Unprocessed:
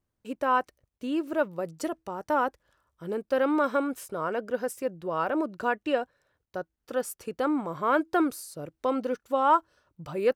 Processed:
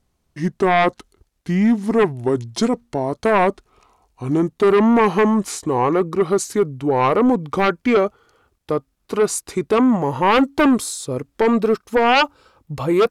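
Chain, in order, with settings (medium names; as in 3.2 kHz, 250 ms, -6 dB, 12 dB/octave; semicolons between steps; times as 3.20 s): gliding tape speed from 68% -> 90%; sine folder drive 10 dB, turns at -10 dBFS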